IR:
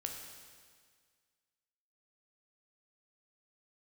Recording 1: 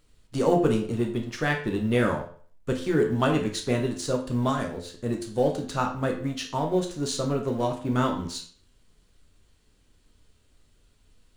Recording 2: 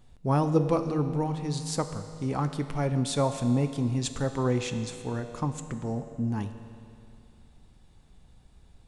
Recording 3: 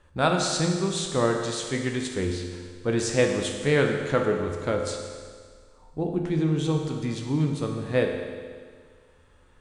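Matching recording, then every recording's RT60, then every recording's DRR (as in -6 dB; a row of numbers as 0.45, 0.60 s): 3; 0.50, 2.6, 1.8 s; 1.5, 8.0, 2.0 dB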